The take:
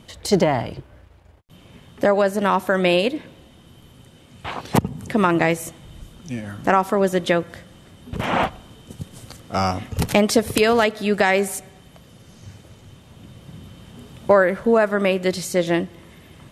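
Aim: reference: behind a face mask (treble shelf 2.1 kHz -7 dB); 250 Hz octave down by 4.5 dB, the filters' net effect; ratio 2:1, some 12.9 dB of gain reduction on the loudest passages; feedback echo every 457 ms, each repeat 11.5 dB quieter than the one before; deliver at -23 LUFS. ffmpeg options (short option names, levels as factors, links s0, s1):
-af "equalizer=f=250:t=o:g=-6.5,acompressor=threshold=0.0178:ratio=2,highshelf=f=2100:g=-7,aecho=1:1:457|914|1371:0.266|0.0718|0.0194,volume=3.55"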